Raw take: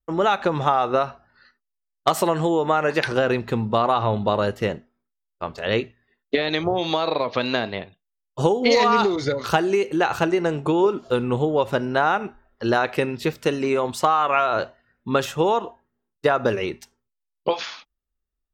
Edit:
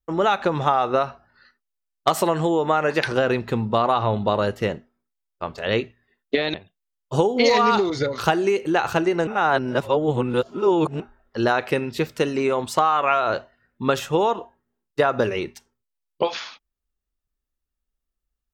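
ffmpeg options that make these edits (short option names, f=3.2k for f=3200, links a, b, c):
-filter_complex "[0:a]asplit=4[a][b][c][d];[a]atrim=end=6.542[e];[b]atrim=start=7.798:end=10.532[f];[c]atrim=start=10.528:end=12.262,asetpts=PTS-STARTPTS,areverse[g];[d]atrim=start=12.258[h];[e][f]acrossfade=d=0.004:c1=hsin:c2=hsin[i];[i][g]acrossfade=d=0.004:c1=hsin:c2=hsin[j];[j][h]acrossfade=d=0.004:c1=hsin:c2=hsin"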